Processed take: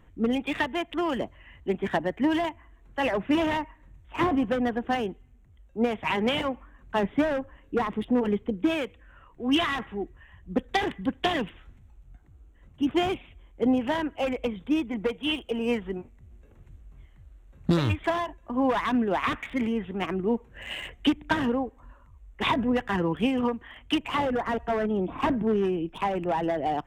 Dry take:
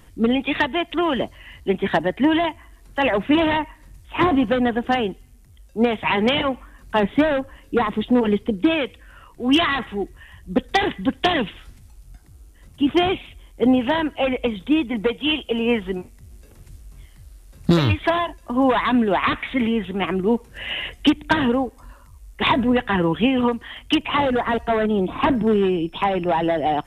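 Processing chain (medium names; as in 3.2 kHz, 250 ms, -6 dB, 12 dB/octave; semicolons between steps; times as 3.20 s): local Wiener filter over 9 samples; trim -6.5 dB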